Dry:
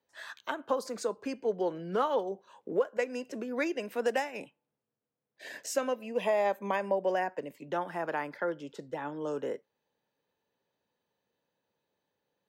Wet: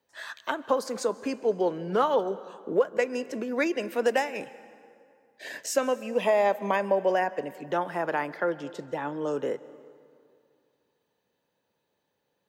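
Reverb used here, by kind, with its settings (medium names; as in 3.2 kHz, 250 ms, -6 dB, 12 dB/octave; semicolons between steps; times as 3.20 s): plate-style reverb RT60 2.4 s, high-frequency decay 0.7×, pre-delay 120 ms, DRR 17.5 dB; trim +5 dB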